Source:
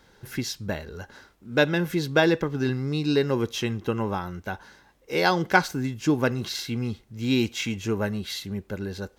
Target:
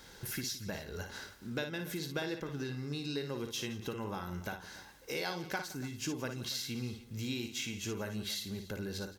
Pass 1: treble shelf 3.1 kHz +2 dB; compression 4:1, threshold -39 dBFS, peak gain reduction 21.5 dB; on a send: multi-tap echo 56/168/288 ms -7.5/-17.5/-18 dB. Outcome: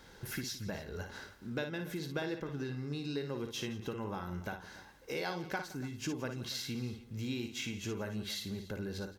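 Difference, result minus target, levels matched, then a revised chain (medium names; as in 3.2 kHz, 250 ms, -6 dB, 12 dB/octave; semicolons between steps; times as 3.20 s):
8 kHz band -3.0 dB
treble shelf 3.1 kHz +10 dB; compression 4:1, threshold -39 dBFS, peak gain reduction 22.5 dB; on a send: multi-tap echo 56/168/288 ms -7.5/-17.5/-18 dB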